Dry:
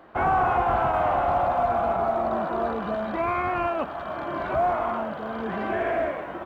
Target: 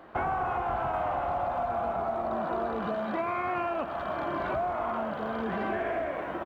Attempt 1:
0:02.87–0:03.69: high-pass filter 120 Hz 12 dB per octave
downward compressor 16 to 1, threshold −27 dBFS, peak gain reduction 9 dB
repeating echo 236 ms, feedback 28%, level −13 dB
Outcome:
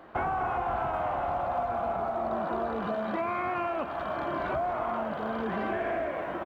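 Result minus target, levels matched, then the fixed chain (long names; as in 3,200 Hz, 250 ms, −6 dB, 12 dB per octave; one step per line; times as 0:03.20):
echo 108 ms late
0:02.87–0:03.69: high-pass filter 120 Hz 12 dB per octave
downward compressor 16 to 1, threshold −27 dBFS, peak gain reduction 9 dB
repeating echo 128 ms, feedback 28%, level −13 dB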